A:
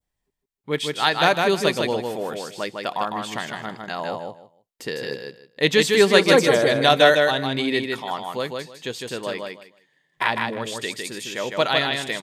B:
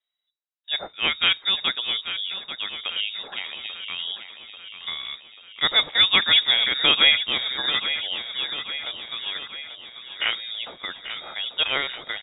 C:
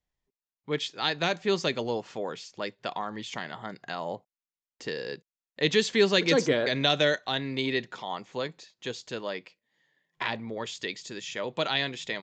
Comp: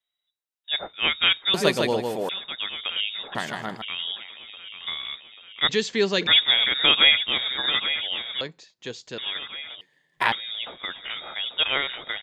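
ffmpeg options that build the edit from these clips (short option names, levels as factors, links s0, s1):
-filter_complex "[0:a]asplit=3[s0][s1][s2];[2:a]asplit=2[s3][s4];[1:a]asplit=6[s5][s6][s7][s8][s9][s10];[s5]atrim=end=1.542[s11];[s0]atrim=start=1.538:end=2.292[s12];[s6]atrim=start=2.288:end=3.352[s13];[s1]atrim=start=3.348:end=3.822[s14];[s7]atrim=start=3.818:end=5.692[s15];[s3]atrim=start=5.688:end=6.272[s16];[s8]atrim=start=6.268:end=8.412[s17];[s4]atrim=start=8.408:end=9.182[s18];[s9]atrim=start=9.178:end=9.812[s19];[s2]atrim=start=9.808:end=10.322[s20];[s10]atrim=start=10.318[s21];[s11][s12]acrossfade=d=0.004:c1=hsin:c2=hsin[s22];[s22][s13]acrossfade=d=0.004:c1=hsin:c2=hsin[s23];[s23][s14]acrossfade=d=0.004:c1=hsin:c2=hsin[s24];[s24][s15]acrossfade=d=0.004:c1=hsin:c2=hsin[s25];[s25][s16]acrossfade=d=0.004:c1=hsin:c2=hsin[s26];[s26][s17]acrossfade=d=0.004:c1=hsin:c2=hsin[s27];[s27][s18]acrossfade=d=0.004:c1=hsin:c2=hsin[s28];[s28][s19]acrossfade=d=0.004:c1=hsin:c2=hsin[s29];[s29][s20]acrossfade=d=0.004:c1=hsin:c2=hsin[s30];[s30][s21]acrossfade=d=0.004:c1=hsin:c2=hsin"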